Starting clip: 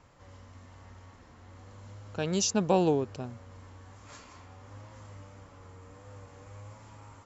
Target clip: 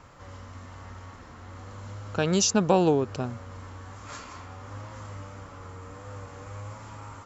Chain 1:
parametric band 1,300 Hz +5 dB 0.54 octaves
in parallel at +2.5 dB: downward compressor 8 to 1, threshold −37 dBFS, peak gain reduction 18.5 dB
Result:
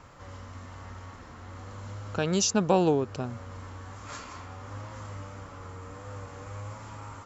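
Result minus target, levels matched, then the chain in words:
downward compressor: peak gain reduction +7 dB
parametric band 1,300 Hz +5 dB 0.54 octaves
in parallel at +2.5 dB: downward compressor 8 to 1, threshold −29 dBFS, peak gain reduction 11.5 dB

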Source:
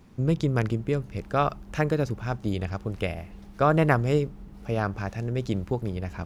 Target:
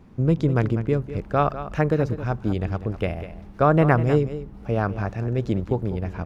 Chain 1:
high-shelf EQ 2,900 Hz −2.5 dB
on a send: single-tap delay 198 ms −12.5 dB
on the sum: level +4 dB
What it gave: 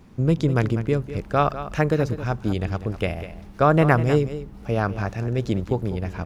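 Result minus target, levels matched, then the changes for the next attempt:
8,000 Hz band +8.0 dB
change: high-shelf EQ 2,900 Hz −12 dB

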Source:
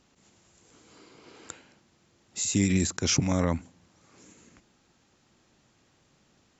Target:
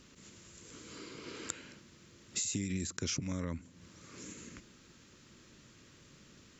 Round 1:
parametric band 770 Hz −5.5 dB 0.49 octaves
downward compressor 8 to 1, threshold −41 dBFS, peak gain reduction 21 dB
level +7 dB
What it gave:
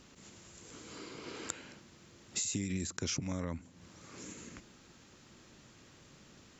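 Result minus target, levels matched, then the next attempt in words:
1,000 Hz band +2.5 dB
parametric band 770 Hz −15.5 dB 0.49 octaves
downward compressor 8 to 1, threshold −41 dBFS, peak gain reduction 21 dB
level +7 dB

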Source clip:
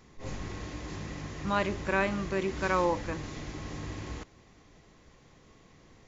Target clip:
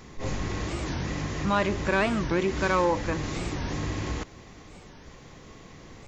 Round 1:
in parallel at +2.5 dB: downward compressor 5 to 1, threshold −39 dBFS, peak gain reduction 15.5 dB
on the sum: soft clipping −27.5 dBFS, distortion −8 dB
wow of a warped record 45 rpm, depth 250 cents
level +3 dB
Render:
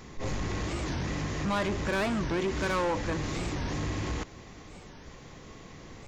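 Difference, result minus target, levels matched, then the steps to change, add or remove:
soft clipping: distortion +10 dB
change: soft clipping −16.5 dBFS, distortion −18 dB

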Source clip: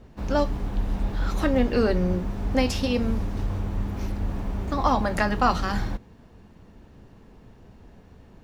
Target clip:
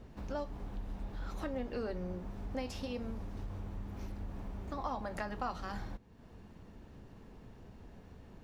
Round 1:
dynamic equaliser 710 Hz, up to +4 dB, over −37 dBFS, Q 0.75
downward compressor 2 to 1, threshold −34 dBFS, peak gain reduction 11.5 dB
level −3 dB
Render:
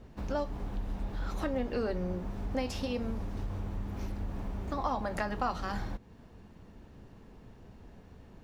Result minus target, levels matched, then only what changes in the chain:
downward compressor: peak gain reduction −5.5 dB
change: downward compressor 2 to 1, threshold −45.5 dBFS, peak gain reduction 17.5 dB

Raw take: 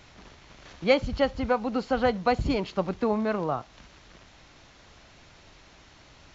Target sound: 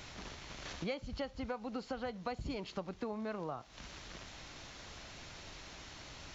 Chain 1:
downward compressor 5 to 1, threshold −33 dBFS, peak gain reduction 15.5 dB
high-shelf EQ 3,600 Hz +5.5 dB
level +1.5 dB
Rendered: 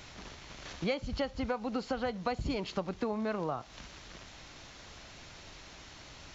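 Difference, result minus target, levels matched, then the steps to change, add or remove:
downward compressor: peak gain reduction −6.5 dB
change: downward compressor 5 to 1, threshold −41 dBFS, peak gain reduction 22 dB

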